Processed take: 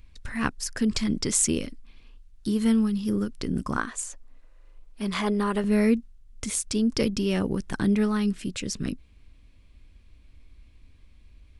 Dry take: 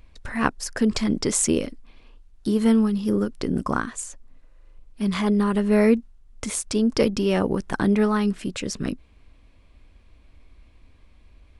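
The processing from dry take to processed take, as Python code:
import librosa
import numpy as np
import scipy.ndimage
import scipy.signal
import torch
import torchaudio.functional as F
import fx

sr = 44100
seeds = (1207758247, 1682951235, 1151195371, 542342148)

y = fx.peak_eq(x, sr, hz=fx.steps((0.0, 650.0), (3.78, 110.0), (5.64, 770.0)), db=-9.5, octaves=2.3)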